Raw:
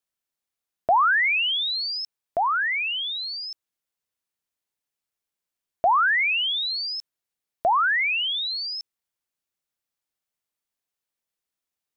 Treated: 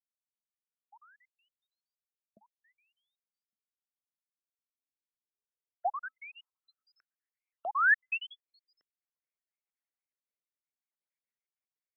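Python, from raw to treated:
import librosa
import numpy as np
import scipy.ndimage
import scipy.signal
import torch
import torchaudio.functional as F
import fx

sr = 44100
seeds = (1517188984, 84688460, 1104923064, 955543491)

y = fx.spec_dropout(x, sr, seeds[0], share_pct=49)
y = fx.rotary(y, sr, hz=0.6)
y = fx.filter_sweep_bandpass(y, sr, from_hz=1900.0, to_hz=590.0, start_s=7.84, end_s=8.55, q=0.8)
y = fx.small_body(y, sr, hz=(260.0, 1300.0), ring_ms=95, db=17, at=(6.05, 6.99))
y = fx.filter_sweep_lowpass(y, sr, from_hz=210.0, to_hz=2200.0, start_s=4.54, end_s=7.48, q=6.6)
y = y * 10.0 ** (-6.0 / 20.0)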